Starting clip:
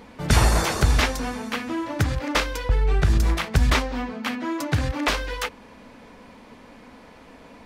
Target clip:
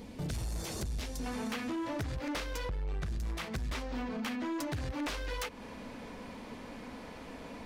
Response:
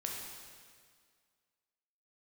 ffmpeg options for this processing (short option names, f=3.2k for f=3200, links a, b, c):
-af "acompressor=threshold=-31dB:ratio=8,asetnsamples=n=441:p=0,asendcmd='1.26 equalizer g -2.5',equalizer=f=1.3k:t=o:w=2.2:g=-13,asoftclip=type=tanh:threshold=-33dB,volume=2dB"